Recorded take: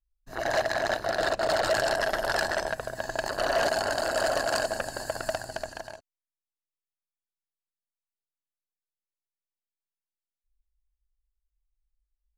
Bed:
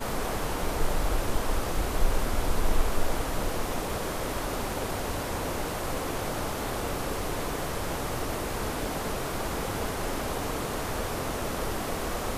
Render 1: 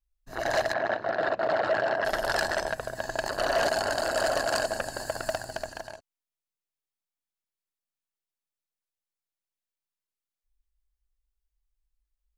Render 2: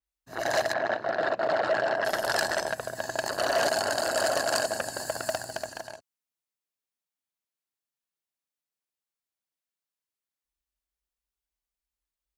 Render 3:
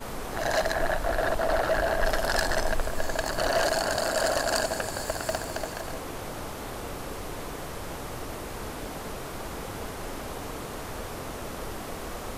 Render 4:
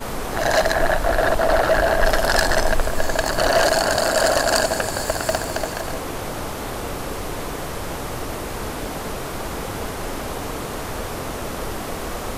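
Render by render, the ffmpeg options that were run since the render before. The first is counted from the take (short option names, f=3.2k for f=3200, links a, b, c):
-filter_complex "[0:a]asettb=1/sr,asplit=3[a][b][c];[a]atrim=end=0.734[d];[b]atrim=start=0.73:end=2.05,asetpts=PTS-STARTPTS,afade=t=in:d=0.004:c=qsin,afade=t=out:st=1.316:d=0.004:c=qsin,highpass=130,lowpass=2.3k[e];[c]atrim=start=2.046[f];[d][e]acrossfade=d=0.004:c1=hsin:c2=qsin[g];[g][f]acrossfade=d=0.004:c1=qsin:c2=hsin,asettb=1/sr,asplit=3[h][i][j];[h]atrim=end=5.004[k];[i]atrim=start=5:end=5.84,asetpts=PTS-STARTPTS,afade=t=in:d=0.004:c=qsin,afade=t=out:st=0.836:d=0.004:c=qsin,acrusher=bits=7:mode=log:mix=0:aa=0.000001[l];[j]atrim=start=5.836[m];[k][l]acrossfade=d=0.004:c1=hsin:c2=qsin[n];[n][m]acrossfade=d=0.004:c1=qsin:c2=hsin"
-af "highpass=100,adynamicequalizer=threshold=0.00447:dfrequency=4800:dqfactor=0.7:tfrequency=4800:tqfactor=0.7:attack=5:release=100:ratio=0.375:range=2.5:mode=boostabove:tftype=highshelf"
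-filter_complex "[1:a]volume=-5dB[a];[0:a][a]amix=inputs=2:normalize=0"
-af "volume=8dB"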